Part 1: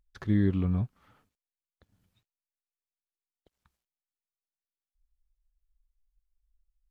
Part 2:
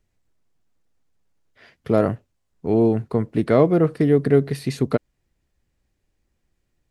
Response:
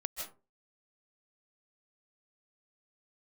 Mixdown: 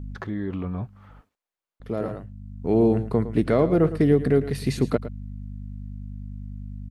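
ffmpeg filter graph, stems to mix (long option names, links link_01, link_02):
-filter_complex "[0:a]alimiter=level_in=2dB:limit=-24dB:level=0:latency=1:release=38,volume=-2dB,equalizer=frequency=800:width=0.32:gain=12.5,volume=-1.5dB,asplit=2[link_01][link_02];[1:a]alimiter=limit=-9dB:level=0:latency=1:release=312,aeval=exprs='val(0)+0.0224*(sin(2*PI*50*n/s)+sin(2*PI*2*50*n/s)/2+sin(2*PI*3*50*n/s)/3+sin(2*PI*4*50*n/s)/4+sin(2*PI*5*50*n/s)/5)':channel_layout=same,volume=0dB,asplit=3[link_03][link_04][link_05];[link_03]atrim=end=1.1,asetpts=PTS-STARTPTS,afade=type=out:start_time=1.096:duration=0.004:curve=hsin[link_06];[link_04]atrim=start=1.1:end=1.8,asetpts=PTS-STARTPTS,volume=0[link_07];[link_05]atrim=start=1.8,asetpts=PTS-STARTPTS,afade=type=in:duration=0.004:curve=hsin[link_08];[link_06][link_07][link_08]concat=n=3:v=0:a=1,asplit=2[link_09][link_10];[link_10]volume=-13.5dB[link_11];[link_02]apad=whole_len=304405[link_12];[link_09][link_12]sidechaincompress=threshold=-48dB:ratio=4:attack=42:release=1380[link_13];[link_11]aecho=0:1:110:1[link_14];[link_01][link_13][link_14]amix=inputs=3:normalize=0"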